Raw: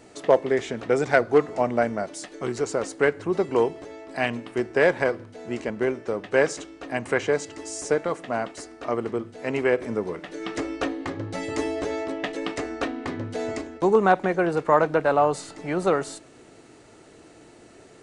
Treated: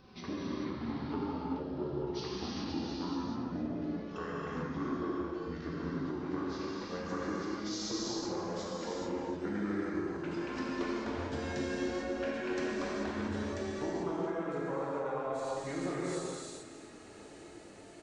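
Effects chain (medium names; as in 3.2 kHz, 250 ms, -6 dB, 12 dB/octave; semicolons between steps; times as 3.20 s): pitch bend over the whole clip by -9.5 st ending unshifted; compression 10:1, threshold -32 dBFS, peak gain reduction 19.5 dB; on a send: delay 275 ms -12 dB; on the sum: gated-style reverb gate 470 ms flat, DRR -7 dB; trim -7.5 dB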